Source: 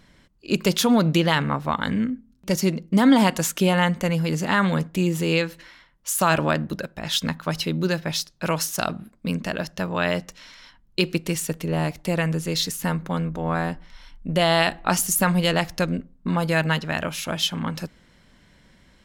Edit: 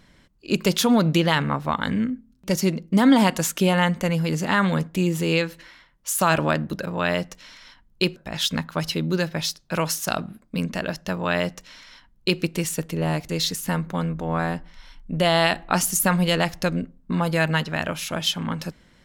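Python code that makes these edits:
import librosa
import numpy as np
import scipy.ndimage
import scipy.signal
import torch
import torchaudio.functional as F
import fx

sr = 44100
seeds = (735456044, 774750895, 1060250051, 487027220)

y = fx.edit(x, sr, fx.duplicate(start_s=9.84, length_s=1.29, to_s=6.87),
    fx.cut(start_s=12.0, length_s=0.45), tone=tone)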